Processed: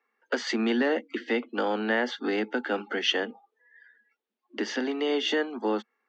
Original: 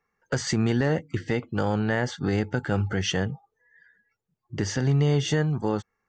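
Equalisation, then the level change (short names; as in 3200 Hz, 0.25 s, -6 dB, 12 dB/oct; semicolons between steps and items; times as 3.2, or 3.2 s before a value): steep high-pass 220 Hz 96 dB/oct; synth low-pass 3400 Hz, resonance Q 1.6; 0.0 dB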